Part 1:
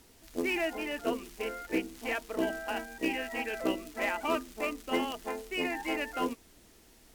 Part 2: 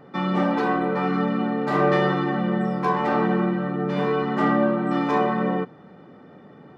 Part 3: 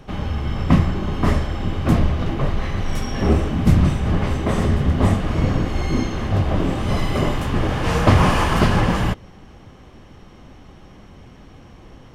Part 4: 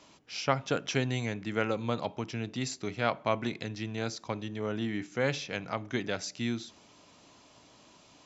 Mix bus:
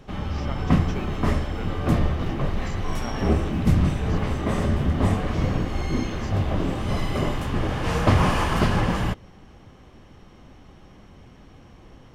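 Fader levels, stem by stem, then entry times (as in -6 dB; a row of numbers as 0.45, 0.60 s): -14.5, -15.5, -4.5, -10.5 dB; 0.50, 0.00, 0.00, 0.00 s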